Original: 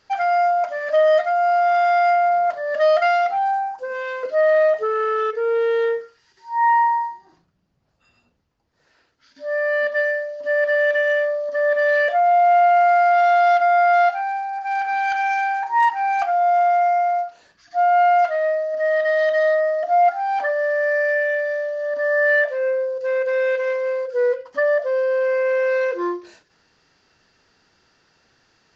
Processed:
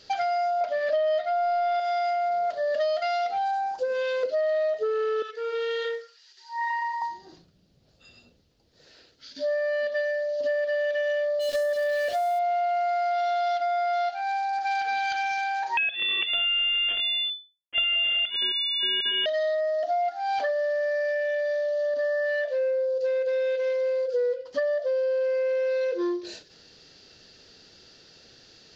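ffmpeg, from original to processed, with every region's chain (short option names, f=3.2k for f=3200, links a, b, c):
-filter_complex "[0:a]asettb=1/sr,asplit=3[a][b][c];[a]atrim=end=0.614[d];[b]atrim=start=0.61:end=1.8,asetpts=PTS-STARTPTS,afade=t=in:d=0.004:c=qsin,afade=t=out:st=1.186:d=0.004:c=qsin,lowpass=4.3k,acontrast=33[e];[c]atrim=start=1.796[f];[d][e]acrossfade=d=0.004:c1=hsin:c2=qsin[g];[g][f]acrossfade=d=0.004:c1=qsin:c2=hsin,asettb=1/sr,asplit=3[h][i][j];[h]atrim=end=5.224[k];[i]atrim=start=5.22:end=7.02,asetpts=PTS-STARTPTS,afade=t=in:d=0.004:c=qsin,afade=t=out:st=1.796:d=0.004:c=qsin,highpass=1k,flanger=delay=0.6:depth=4.1:regen=-70:speed=1.1:shape=triangular[l];[j]atrim=start=7.016[m];[k][l]acrossfade=d=0.004:c1=hsin:c2=qsin[n];[n][m]acrossfade=d=0.004:c1=qsin:c2=hsin,asettb=1/sr,asplit=3[o][p][q];[o]atrim=end=11.394[r];[p]atrim=start=11.39:end=12.39,asetpts=PTS-STARTPTS,afade=t=in:d=0.004:c=qsin,afade=t=out:st=0.996:d=0.004:c=qsin,aeval=exprs='val(0)*gte(abs(val(0)),0.0398)':c=same,adynamicequalizer=threshold=0.0141:dfrequency=4500:dqfactor=0.7:tfrequency=4500:tqfactor=0.7:attack=5:release=100:ratio=0.375:range=3:mode=cutabove:tftype=highshelf[s];[q]atrim=start=12.386[t];[r][s]acrossfade=d=0.004:c1=hsin:c2=qsin[u];[u][t]acrossfade=d=0.004:c1=qsin:c2=hsin,asettb=1/sr,asplit=3[v][w][x];[v]atrim=end=15.774[y];[w]atrim=start=15.77:end=19.26,asetpts=PTS-STARTPTS,afade=t=in:d=0.004:c=qsin,afade=t=out:st=3.486:d=0.004:c=qsin,lowshelf=f=290:g=-8.5,acrusher=bits=4:dc=4:mix=0:aa=0.000001,lowpass=f=3k:t=q:w=0.5098,lowpass=f=3k:t=q:w=0.6013,lowpass=f=3k:t=q:w=0.9,lowpass=f=3k:t=q:w=2.563,afreqshift=-3500[z];[x]atrim=start=19.256[aa];[y][z]acrossfade=d=0.004:c1=hsin:c2=qsin[ab];[ab][aa]acrossfade=d=0.004:c1=qsin:c2=hsin,equalizer=f=500:t=o:w=1:g=5,equalizer=f=1k:t=o:w=1:g=-10,equalizer=f=2k:t=o:w=1:g=-4,equalizer=f=4k:t=o:w=1:g=9,acompressor=threshold=-31dB:ratio=6,volume=6dB"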